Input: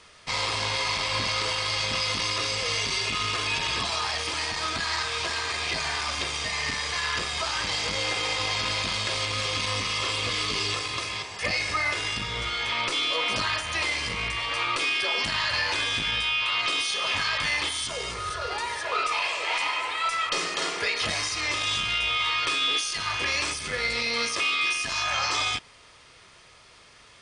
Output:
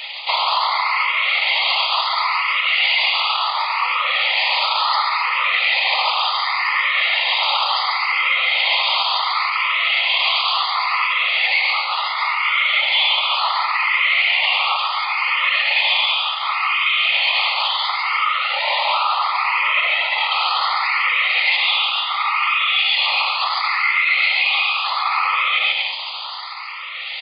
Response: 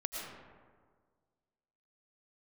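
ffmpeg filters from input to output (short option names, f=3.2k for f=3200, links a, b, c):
-filter_complex "[0:a]aemphasis=mode=reproduction:type=50kf,acrossover=split=2800[a][b];[b]acompressor=threshold=-45dB:ratio=4:attack=1:release=60[c];[a][c]amix=inputs=2:normalize=0,afftfilt=real='hypot(re,im)*cos(2*PI*random(0))':imag='hypot(re,im)*sin(2*PI*random(1))':win_size=512:overlap=0.75,highshelf=f=2.1k:g=9.5,areverse,acompressor=threshold=-40dB:ratio=16,areverse,aeval=exprs='0.0266*(cos(1*acos(clip(val(0)/0.0266,-1,1)))-cos(1*PI/2))+0.00106*(cos(2*acos(clip(val(0)/0.0266,-1,1)))-cos(2*PI/2))+0.00299*(cos(4*acos(clip(val(0)/0.0266,-1,1)))-cos(4*PI/2))':c=same,afftfilt=real='re*between(b*sr/4096,740,4900)':imag='im*between(b*sr/4096,740,4900)':win_size=4096:overlap=0.75,asplit=2[d][e];[e]asetrate=29433,aresample=44100,atempo=1.49831,volume=-12dB[f];[d][f]amix=inputs=2:normalize=0,asuperstop=centerf=1600:order=4:qfactor=2.8,aecho=1:1:140|231|290.2|328.6|353.6:0.631|0.398|0.251|0.158|0.1,alimiter=level_in=34.5dB:limit=-1dB:release=50:level=0:latency=1,asplit=2[g][h];[h]afreqshift=0.7[i];[g][i]amix=inputs=2:normalize=1,volume=-5dB"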